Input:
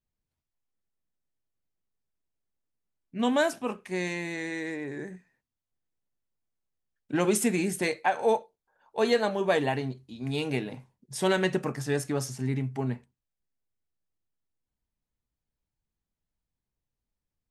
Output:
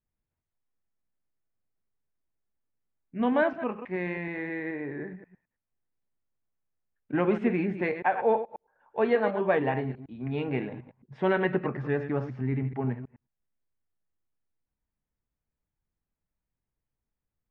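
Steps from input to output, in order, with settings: chunks repeated in reverse 107 ms, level -10 dB; low-pass 2.3 kHz 24 dB/octave

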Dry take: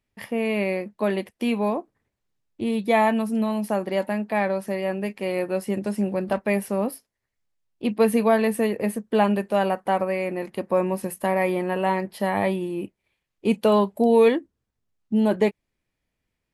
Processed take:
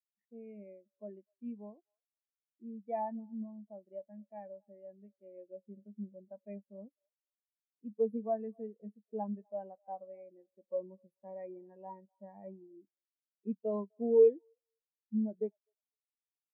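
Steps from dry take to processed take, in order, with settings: feedback echo behind a band-pass 252 ms, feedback 33%, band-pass 960 Hz, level -15 dB; spectral contrast expander 2.5:1; trim -7.5 dB

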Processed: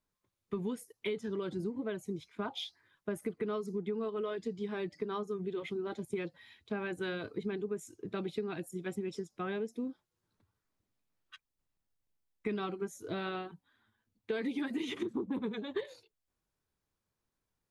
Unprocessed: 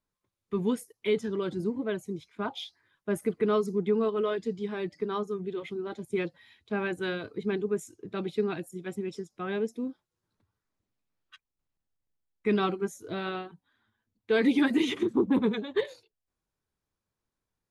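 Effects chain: compression 6:1, threshold -33 dBFS, peak gain reduction 13.5 dB

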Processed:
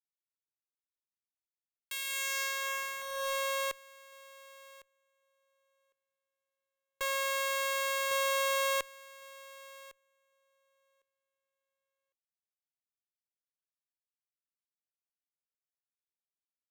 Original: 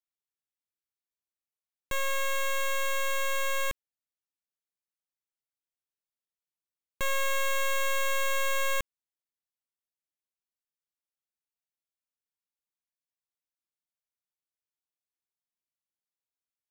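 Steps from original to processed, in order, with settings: feedback delay 1105 ms, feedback 25%, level -8 dB; high-pass sweep 2.6 kHz -> 470 Hz, 2.05–3.35 s; Chebyshev shaper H 3 -11 dB, 7 -35 dB, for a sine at -16.5 dBFS

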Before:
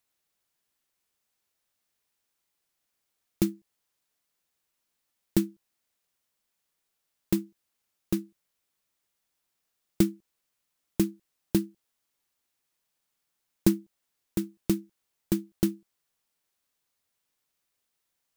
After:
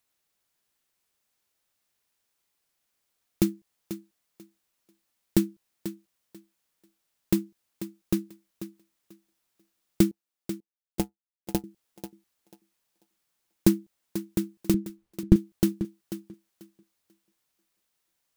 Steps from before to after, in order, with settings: 10.11–11.64 s: power-law waveshaper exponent 2; 14.74–15.36 s: RIAA curve playback; thinning echo 490 ms, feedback 21%, high-pass 170 Hz, level -11 dB; trim +2 dB

